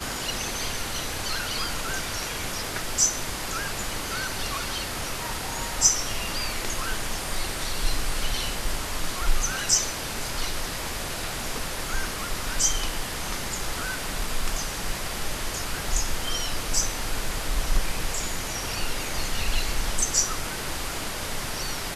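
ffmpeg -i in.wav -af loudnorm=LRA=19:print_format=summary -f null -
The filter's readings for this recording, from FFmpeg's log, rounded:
Input Integrated:    -27.7 LUFS
Input True Peak:      -4.6 dBTP
Input LRA:             2.6 LU
Input Threshold:     -37.7 LUFS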